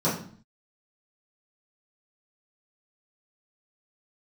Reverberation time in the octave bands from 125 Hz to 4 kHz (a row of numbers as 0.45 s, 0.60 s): 0.65 s, 0.65 s, 0.50 s, 0.50 s, 0.45 s, 0.45 s